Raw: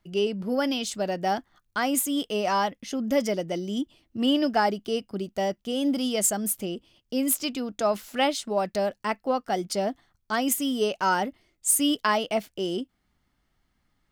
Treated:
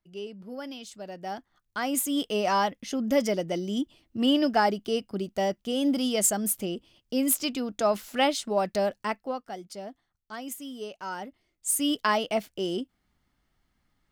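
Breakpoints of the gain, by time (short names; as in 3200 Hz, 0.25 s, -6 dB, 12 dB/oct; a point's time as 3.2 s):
1.01 s -12.5 dB
2.2 s 0 dB
8.99 s 0 dB
9.6 s -12.5 dB
11.08 s -12.5 dB
12.01 s -1 dB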